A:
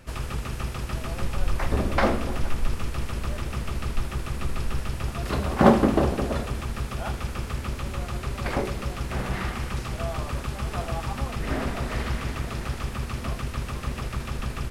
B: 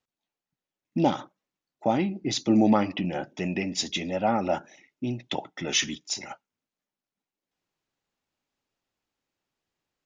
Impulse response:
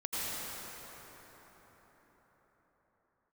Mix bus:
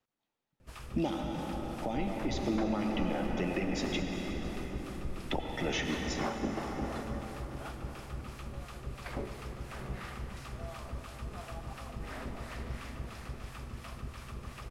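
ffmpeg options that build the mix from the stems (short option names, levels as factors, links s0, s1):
-filter_complex "[0:a]acrossover=split=670[s0][s1];[s0]aeval=exprs='val(0)*(1-0.7/2+0.7/2*cos(2*PI*2.9*n/s))':c=same[s2];[s1]aeval=exprs='val(0)*(1-0.7/2-0.7/2*cos(2*PI*2.9*n/s))':c=same[s3];[s2][s3]amix=inputs=2:normalize=0,adelay=600,volume=0.266,asplit=2[s4][s5];[s5]volume=0.282[s6];[1:a]highshelf=f=3300:g=-8.5,acrossover=split=290|2200[s7][s8][s9];[s7]acompressor=threshold=0.0126:ratio=4[s10];[s8]acompressor=threshold=0.02:ratio=4[s11];[s9]acompressor=threshold=0.00708:ratio=4[s12];[s10][s11][s12]amix=inputs=3:normalize=0,volume=1,asplit=3[s13][s14][s15];[s13]atrim=end=4,asetpts=PTS-STARTPTS,afade=t=out:st=3.996:d=0.004:c=hsin[s16];[s14]atrim=start=4:end=5.28,asetpts=PTS-STARTPTS,volume=0[s17];[s15]atrim=start=5.28,asetpts=PTS-STARTPTS,afade=t=in:d=0.004:c=hsin[s18];[s16][s17][s18]concat=n=3:v=0:a=1,asplit=2[s19][s20];[s20]volume=0.562[s21];[2:a]atrim=start_sample=2205[s22];[s6][s21]amix=inputs=2:normalize=0[s23];[s23][s22]afir=irnorm=-1:irlink=0[s24];[s4][s19][s24]amix=inputs=3:normalize=0,alimiter=limit=0.0841:level=0:latency=1:release=431"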